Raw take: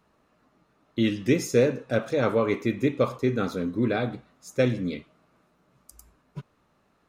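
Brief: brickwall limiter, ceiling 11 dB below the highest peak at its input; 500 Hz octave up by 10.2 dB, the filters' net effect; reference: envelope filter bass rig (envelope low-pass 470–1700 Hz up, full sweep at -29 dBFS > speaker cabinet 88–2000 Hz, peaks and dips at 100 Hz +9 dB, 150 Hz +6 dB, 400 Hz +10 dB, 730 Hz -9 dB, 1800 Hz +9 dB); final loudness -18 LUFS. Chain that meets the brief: bell 500 Hz +7 dB; limiter -15.5 dBFS; envelope low-pass 470–1700 Hz up, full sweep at -29 dBFS; speaker cabinet 88–2000 Hz, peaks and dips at 100 Hz +9 dB, 150 Hz +6 dB, 400 Hz +10 dB, 730 Hz -9 dB, 1800 Hz +9 dB; gain +3.5 dB

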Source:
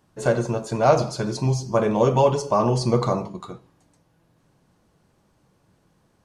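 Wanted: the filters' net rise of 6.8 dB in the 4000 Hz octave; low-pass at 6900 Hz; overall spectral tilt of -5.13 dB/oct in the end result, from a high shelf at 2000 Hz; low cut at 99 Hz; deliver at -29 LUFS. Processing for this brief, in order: HPF 99 Hz; LPF 6900 Hz; high shelf 2000 Hz +3.5 dB; bell 4000 Hz +5.5 dB; gain -7.5 dB

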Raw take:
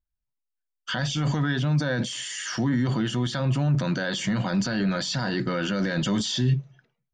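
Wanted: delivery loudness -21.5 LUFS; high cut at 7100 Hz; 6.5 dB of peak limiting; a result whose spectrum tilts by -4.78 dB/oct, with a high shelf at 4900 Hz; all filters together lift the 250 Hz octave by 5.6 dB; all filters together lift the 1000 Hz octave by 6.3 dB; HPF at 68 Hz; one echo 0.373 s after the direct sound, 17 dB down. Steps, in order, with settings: HPF 68 Hz; LPF 7100 Hz; bell 250 Hz +7 dB; bell 1000 Hz +7.5 dB; high shelf 4900 Hz +6.5 dB; limiter -16.5 dBFS; echo 0.373 s -17 dB; gain +3.5 dB

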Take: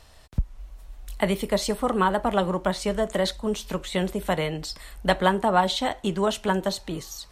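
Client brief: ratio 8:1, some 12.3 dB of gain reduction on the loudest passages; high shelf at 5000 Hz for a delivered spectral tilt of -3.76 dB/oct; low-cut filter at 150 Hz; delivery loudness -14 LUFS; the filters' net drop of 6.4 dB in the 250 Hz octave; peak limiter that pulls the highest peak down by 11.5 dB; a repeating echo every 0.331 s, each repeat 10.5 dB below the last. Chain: HPF 150 Hz; bell 250 Hz -8 dB; high shelf 5000 Hz +5.5 dB; compressor 8:1, threshold -29 dBFS; limiter -24.5 dBFS; feedback echo 0.331 s, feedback 30%, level -10.5 dB; gain +21.5 dB

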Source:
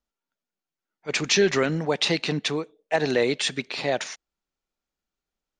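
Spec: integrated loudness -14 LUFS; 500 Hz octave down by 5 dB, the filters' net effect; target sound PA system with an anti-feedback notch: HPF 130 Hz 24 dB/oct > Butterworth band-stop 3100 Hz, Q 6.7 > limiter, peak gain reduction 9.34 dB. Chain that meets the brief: HPF 130 Hz 24 dB/oct; Butterworth band-stop 3100 Hz, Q 6.7; bell 500 Hz -6.5 dB; gain +15.5 dB; limiter -3 dBFS

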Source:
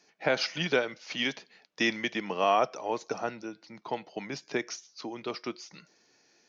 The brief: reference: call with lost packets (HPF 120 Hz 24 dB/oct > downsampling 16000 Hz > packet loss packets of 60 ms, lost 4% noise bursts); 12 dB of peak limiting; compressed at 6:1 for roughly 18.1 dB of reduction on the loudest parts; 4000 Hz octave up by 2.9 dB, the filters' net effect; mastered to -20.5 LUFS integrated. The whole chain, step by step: bell 4000 Hz +4 dB; compressor 6:1, threshold -40 dBFS; limiter -34 dBFS; HPF 120 Hz 24 dB/oct; downsampling 16000 Hz; packet loss packets of 60 ms, lost 4% noise bursts; gain +26 dB

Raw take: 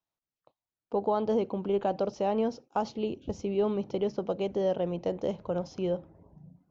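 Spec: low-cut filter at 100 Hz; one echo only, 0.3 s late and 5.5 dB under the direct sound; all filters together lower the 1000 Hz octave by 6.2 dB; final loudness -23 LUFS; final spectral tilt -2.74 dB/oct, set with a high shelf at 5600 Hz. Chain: HPF 100 Hz; bell 1000 Hz -8.5 dB; high shelf 5600 Hz -6 dB; echo 0.3 s -5.5 dB; gain +8.5 dB

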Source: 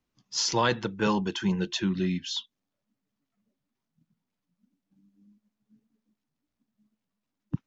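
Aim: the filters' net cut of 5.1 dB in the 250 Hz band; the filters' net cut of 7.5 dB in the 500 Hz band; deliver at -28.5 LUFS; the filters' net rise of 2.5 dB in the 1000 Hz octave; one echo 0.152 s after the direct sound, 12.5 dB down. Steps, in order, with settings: bell 250 Hz -6 dB; bell 500 Hz -8.5 dB; bell 1000 Hz +5 dB; echo 0.152 s -12.5 dB; gain +0.5 dB

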